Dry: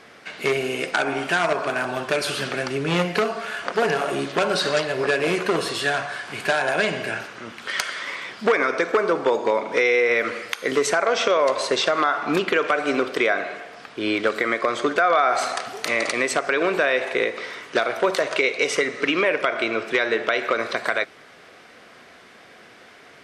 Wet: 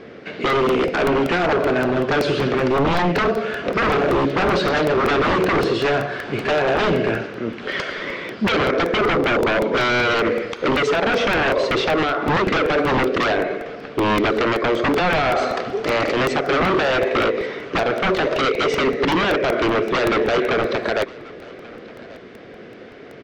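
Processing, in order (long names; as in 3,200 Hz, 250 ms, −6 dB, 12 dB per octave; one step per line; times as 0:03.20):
low shelf with overshoot 620 Hz +8.5 dB, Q 1.5
wave folding −16 dBFS
high-frequency loss of the air 180 metres
single-tap delay 1,136 ms −21.5 dB
regular buffer underruns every 0.19 s, samples 64, repeat, from 0:00.50
level +4 dB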